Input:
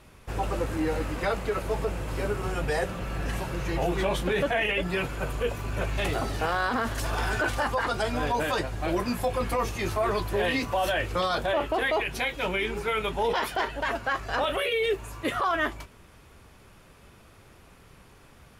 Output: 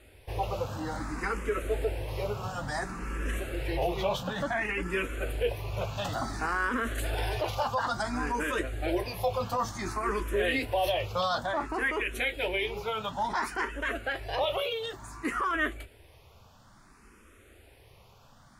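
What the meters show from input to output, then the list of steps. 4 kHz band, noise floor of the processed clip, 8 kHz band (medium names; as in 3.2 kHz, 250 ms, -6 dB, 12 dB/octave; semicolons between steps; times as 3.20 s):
-3.0 dB, -57 dBFS, -3.5 dB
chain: peaking EQ 160 Hz -9 dB 0.27 oct; barber-pole phaser +0.57 Hz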